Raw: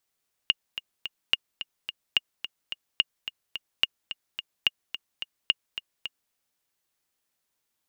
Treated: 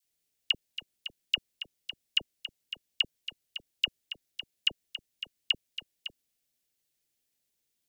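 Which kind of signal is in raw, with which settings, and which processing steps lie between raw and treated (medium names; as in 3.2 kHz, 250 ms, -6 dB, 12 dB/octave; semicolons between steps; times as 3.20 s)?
metronome 216 bpm, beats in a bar 3, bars 7, 2.85 kHz, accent 12 dB -7 dBFS
peaking EQ 1.1 kHz -14 dB 1.2 oct; phase dispersion lows, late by 47 ms, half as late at 1.1 kHz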